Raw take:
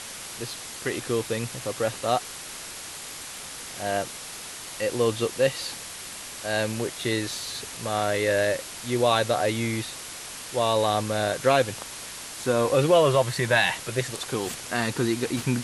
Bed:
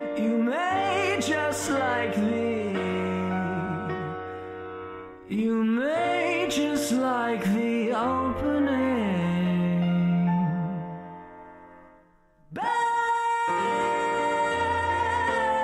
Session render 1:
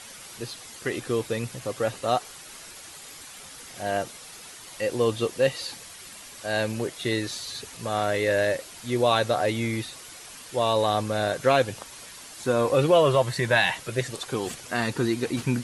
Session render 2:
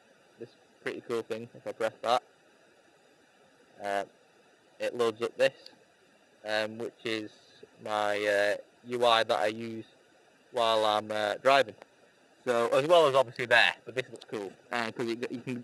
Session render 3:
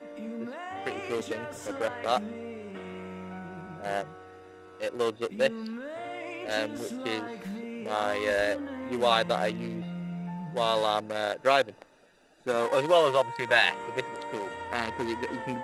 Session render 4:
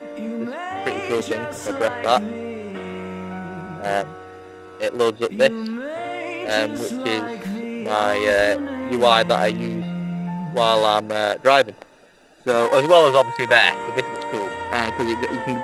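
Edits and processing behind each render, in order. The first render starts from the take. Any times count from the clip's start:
broadband denoise 8 dB, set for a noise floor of −39 dBFS
adaptive Wiener filter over 41 samples; meter weighting curve A
mix in bed −13 dB
level +9.5 dB; brickwall limiter −1 dBFS, peak gain reduction 3 dB

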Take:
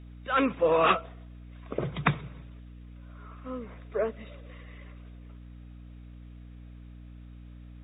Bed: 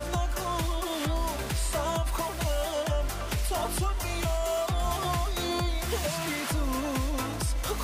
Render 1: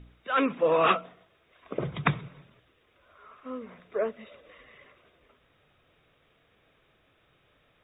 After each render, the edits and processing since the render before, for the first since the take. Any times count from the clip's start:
hum removal 60 Hz, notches 5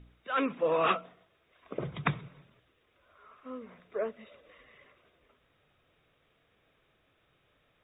level −4.5 dB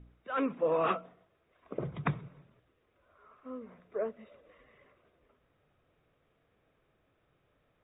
low-pass filter 1,100 Hz 6 dB per octave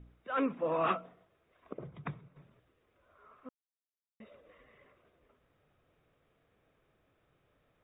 0:00.57–0:01.00: parametric band 460 Hz −7 dB 0.37 octaves
0:01.73–0:02.36: clip gain −9 dB
0:03.49–0:04.20: silence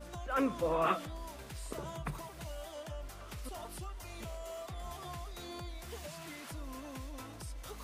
mix in bed −15.5 dB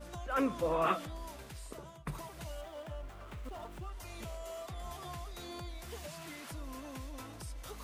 0:01.34–0:02.07: fade out, to −15 dB
0:02.61–0:03.92: running median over 9 samples

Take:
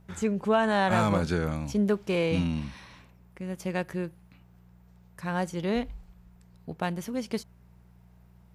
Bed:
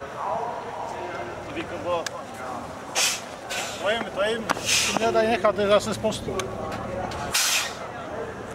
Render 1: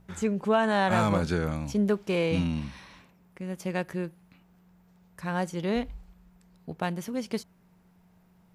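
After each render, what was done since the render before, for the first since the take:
hum removal 60 Hz, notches 2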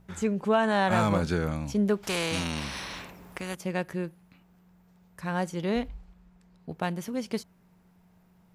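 0:00.86–0:01.49: floating-point word with a short mantissa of 6 bits
0:02.03–0:03.55: every bin compressed towards the loudest bin 2 to 1
0:05.88–0:06.70: high-shelf EQ 9,200 Hz −11 dB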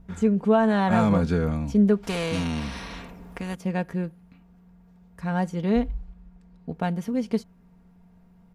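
spectral tilt −2 dB per octave
comb filter 4.3 ms, depth 43%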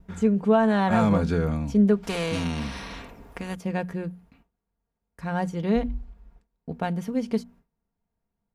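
mains-hum notches 60/120/180/240 Hz
noise gate with hold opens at −44 dBFS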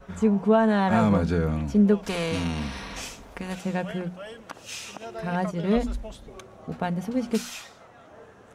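mix in bed −16 dB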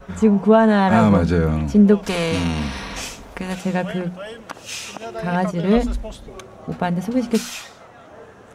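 level +6.5 dB

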